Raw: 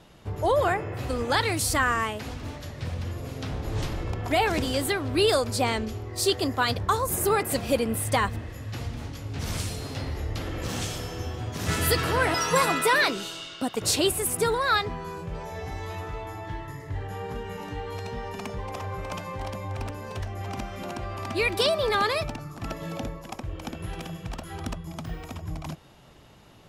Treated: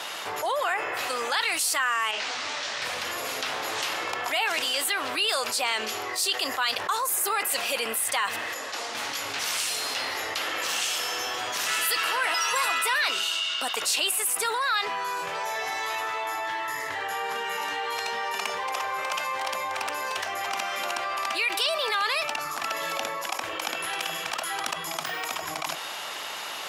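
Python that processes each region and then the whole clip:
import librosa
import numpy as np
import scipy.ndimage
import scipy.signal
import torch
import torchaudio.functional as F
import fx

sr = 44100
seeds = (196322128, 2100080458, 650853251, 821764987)

y = fx.chain(x, sr, fx.delta_mod(bps=64000, step_db=-35.5),
    fx.lowpass(hz=6200.0, slope=24),
    fx.detune_double(cents=50), at=(2.11, 2.82))
y = fx.chain(y, sr, fx.bandpass_edges(low_hz=330.0, high_hz=7000.0),
    fx.peak_eq(hz=2400.0, db=-10.5, octaves=2.7), at=(8.54, 8.95))
y = scipy.signal.sosfilt(scipy.signal.butter(2, 1000.0, 'highpass', fs=sr, output='sos'), y)
y = fx.dynamic_eq(y, sr, hz=2800.0, q=6.7, threshold_db=-50.0, ratio=4.0, max_db=7)
y = fx.env_flatten(y, sr, amount_pct=70)
y = F.gain(torch.from_numpy(y), -3.0).numpy()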